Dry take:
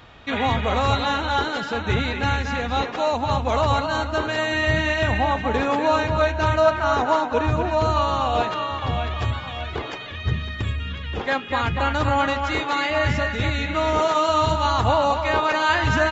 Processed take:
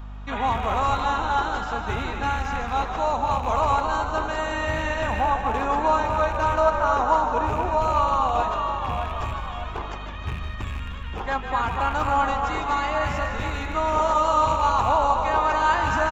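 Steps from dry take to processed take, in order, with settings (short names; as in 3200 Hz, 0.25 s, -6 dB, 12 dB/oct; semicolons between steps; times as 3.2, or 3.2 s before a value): rattling part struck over -24 dBFS, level -21 dBFS; low shelf 250 Hz -3.5 dB; on a send: frequency-shifting echo 0.153 s, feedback 61%, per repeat -47 Hz, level -9 dB; on the sum: hum 50 Hz, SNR 12 dB; ten-band EQ 125 Hz -8 dB, 250 Hz -3 dB, 500 Hz -6 dB, 1000 Hz +5 dB, 2000 Hz -7 dB, 4000 Hz -9 dB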